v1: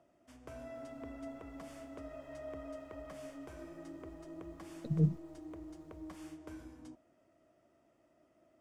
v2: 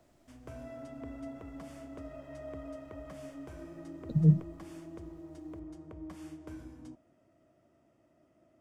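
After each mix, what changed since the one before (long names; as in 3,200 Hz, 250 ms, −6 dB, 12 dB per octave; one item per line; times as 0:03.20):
speech: entry −0.75 s
master: add parametric band 120 Hz +7.5 dB 2.3 octaves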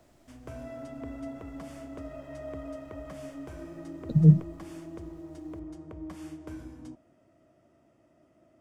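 speech +5.5 dB
background +4.0 dB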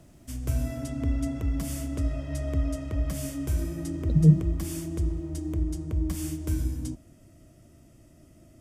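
background: remove resonant band-pass 850 Hz, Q 0.87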